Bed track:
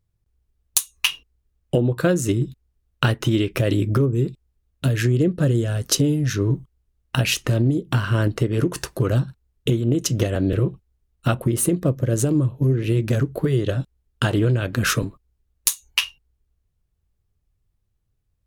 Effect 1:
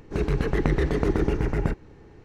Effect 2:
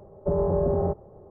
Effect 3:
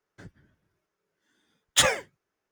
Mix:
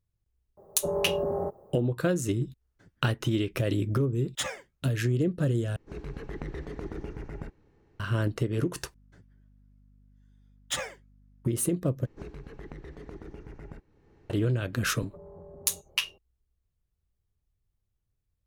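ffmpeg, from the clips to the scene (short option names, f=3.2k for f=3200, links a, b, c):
-filter_complex "[2:a]asplit=2[a][b];[3:a]asplit=2[c][d];[1:a]asplit=2[e][f];[0:a]volume=-7.5dB[g];[a]aemphasis=mode=production:type=bsi[h];[d]aeval=exprs='val(0)+0.00501*(sin(2*PI*50*n/s)+sin(2*PI*2*50*n/s)/2+sin(2*PI*3*50*n/s)/3+sin(2*PI*4*50*n/s)/4+sin(2*PI*5*50*n/s)/5)':c=same[i];[f]acompressor=threshold=-32dB:ratio=4:attack=48:release=876:knee=1:detection=peak[j];[b]acompressor=threshold=-32dB:ratio=8:attack=2.4:release=199:knee=1:detection=peak[k];[g]asplit=4[l][m][n][o];[l]atrim=end=5.764[p];[e]atrim=end=2.24,asetpts=PTS-STARTPTS,volume=-14.5dB[q];[m]atrim=start=7.996:end=8.944[r];[i]atrim=end=2.51,asetpts=PTS-STARTPTS,volume=-11.5dB[s];[n]atrim=start=11.446:end=12.064[t];[j]atrim=end=2.24,asetpts=PTS-STARTPTS,volume=-10.5dB[u];[o]atrim=start=14.296[v];[h]atrim=end=1.3,asetpts=PTS-STARTPTS,volume=-2.5dB,afade=t=in:d=0.004:c=hsin,afade=t=out:st=1.296:d=0.004:c=hsin,adelay=570[w];[c]atrim=end=2.51,asetpts=PTS-STARTPTS,volume=-12dB,afade=t=in:d=0.004:c=hsin,afade=t=out:st=2.506:d=0.004:c=hsin,adelay=2610[x];[k]atrim=end=1.3,asetpts=PTS-STARTPTS,volume=-11.5dB,afade=t=in:d=0.004:c=hsin,afade=t=out:st=1.296:d=0.004:c=hsin,adelay=14880[y];[p][q]acrossfade=d=0.004:c1=hsin:c2=hsin[z];[z][r]acrossfade=d=0.004:c1=hsin:c2=hsin[aa];[aa][s]acrossfade=d=0.004:c1=hsin:c2=hsin[ab];[ab][t]acrossfade=d=0.004:c1=hsin:c2=hsin[ac];[ac][u]acrossfade=d=0.004:c1=hsin:c2=hsin[ad];[ad][v]acrossfade=d=0.004:c1=hsin:c2=hsin[ae];[ae][w][x][y]amix=inputs=4:normalize=0"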